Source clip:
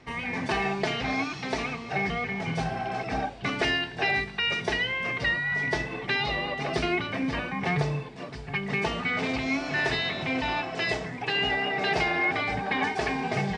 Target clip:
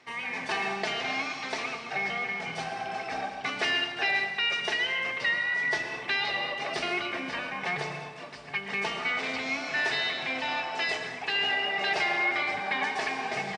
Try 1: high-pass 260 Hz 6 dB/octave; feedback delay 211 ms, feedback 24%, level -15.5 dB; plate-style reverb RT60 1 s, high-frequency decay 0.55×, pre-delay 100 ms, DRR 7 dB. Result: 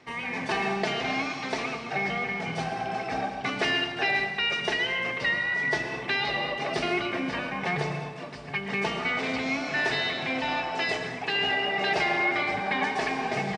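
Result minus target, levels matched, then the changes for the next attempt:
250 Hz band +6.5 dB
change: high-pass 880 Hz 6 dB/octave

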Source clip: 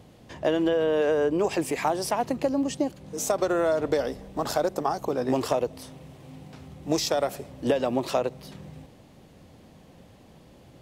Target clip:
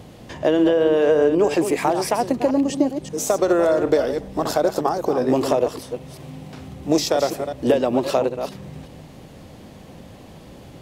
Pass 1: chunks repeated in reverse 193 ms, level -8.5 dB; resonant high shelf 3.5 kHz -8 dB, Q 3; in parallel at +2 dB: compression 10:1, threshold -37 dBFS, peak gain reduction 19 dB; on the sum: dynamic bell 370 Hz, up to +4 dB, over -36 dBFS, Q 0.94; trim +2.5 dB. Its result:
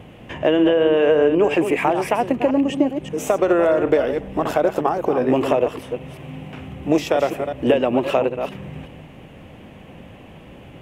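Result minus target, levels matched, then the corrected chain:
8 kHz band -9.5 dB; compression: peak gain reduction -7 dB
chunks repeated in reverse 193 ms, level -8.5 dB; in parallel at +2 dB: compression 10:1, threshold -45 dBFS, peak gain reduction 26 dB; on the sum: dynamic bell 370 Hz, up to +4 dB, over -36 dBFS, Q 0.94; trim +2.5 dB

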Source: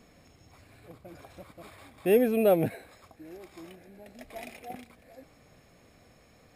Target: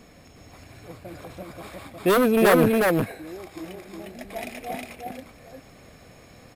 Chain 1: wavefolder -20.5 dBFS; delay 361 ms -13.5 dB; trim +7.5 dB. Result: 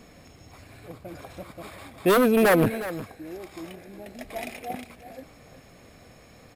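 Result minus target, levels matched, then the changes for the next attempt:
echo-to-direct -11.5 dB
change: delay 361 ms -2 dB

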